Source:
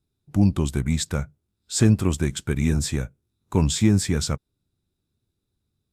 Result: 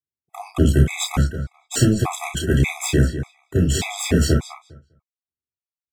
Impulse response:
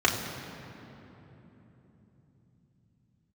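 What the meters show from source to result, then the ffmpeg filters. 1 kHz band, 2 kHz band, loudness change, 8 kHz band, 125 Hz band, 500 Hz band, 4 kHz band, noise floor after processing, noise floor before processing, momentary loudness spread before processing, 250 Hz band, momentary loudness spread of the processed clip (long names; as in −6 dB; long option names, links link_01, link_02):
+6.5 dB, +7.0 dB, +2.5 dB, +2.5 dB, +3.0 dB, +5.0 dB, +3.0 dB, below −85 dBFS, −80 dBFS, 11 LU, +0.5 dB, 11 LU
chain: -filter_complex "[0:a]agate=range=-33dB:threshold=-42dB:ratio=3:detection=peak,highshelf=frequency=9700:gain=-8,bandreject=frequency=1400:width=17,acompressor=threshold=-18dB:ratio=6,aexciter=amount=8.8:drive=4:freq=9100,asplit=2[link_01][link_02];[link_02]adelay=202,lowpass=frequency=4900:poles=1,volume=-9dB,asplit=2[link_03][link_04];[link_04]adelay=202,lowpass=frequency=4900:poles=1,volume=0.18,asplit=2[link_05][link_06];[link_06]adelay=202,lowpass=frequency=4900:poles=1,volume=0.18[link_07];[link_01][link_03][link_05][link_07]amix=inputs=4:normalize=0,aeval=exprs='0.376*(cos(1*acos(clip(val(0)/0.376,-1,1)))-cos(1*PI/2))+0.0944*(cos(4*acos(clip(val(0)/0.376,-1,1)))-cos(4*PI/2))':channel_layout=same[link_08];[1:a]atrim=start_sample=2205,atrim=end_sample=3087[link_09];[link_08][link_09]afir=irnorm=-1:irlink=0,afftfilt=real='re*gt(sin(2*PI*1.7*pts/sr)*(1-2*mod(floor(b*sr/1024/660),2)),0)':imag='im*gt(sin(2*PI*1.7*pts/sr)*(1-2*mod(floor(b*sr/1024/660),2)),0)':win_size=1024:overlap=0.75,volume=-4.5dB"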